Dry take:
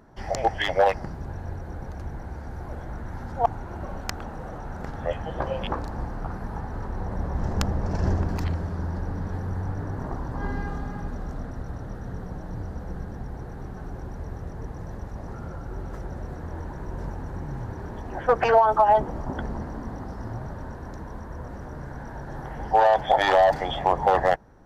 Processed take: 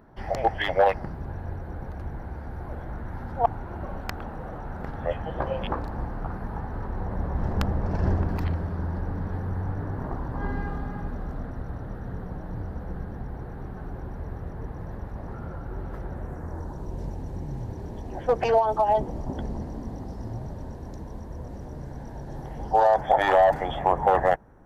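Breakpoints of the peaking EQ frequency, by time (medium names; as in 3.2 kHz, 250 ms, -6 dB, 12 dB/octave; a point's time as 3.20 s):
peaking EQ -12 dB 1.1 oct
16.09 s 6.7 kHz
16.97 s 1.4 kHz
22.56 s 1.4 kHz
23.18 s 4.7 kHz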